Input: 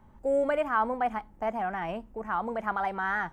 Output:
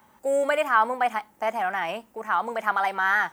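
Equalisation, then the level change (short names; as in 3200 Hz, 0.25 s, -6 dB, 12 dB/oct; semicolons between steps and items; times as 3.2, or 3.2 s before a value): HPF 46 Hz; tilt +3.5 dB/oct; low shelf 110 Hz -10.5 dB; +6.0 dB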